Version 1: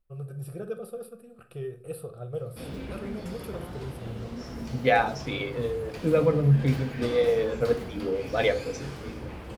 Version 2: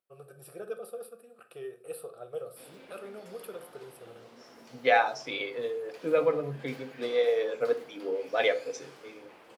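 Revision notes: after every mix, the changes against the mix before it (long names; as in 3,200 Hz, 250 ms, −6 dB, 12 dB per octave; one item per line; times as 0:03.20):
background −8.5 dB
master: add high-pass filter 440 Hz 12 dB per octave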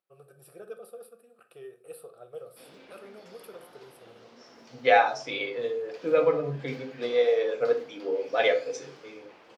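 first voice −4.0 dB
second voice: send +6.5 dB
background: add high shelf with overshoot 7,500 Hz −9 dB, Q 1.5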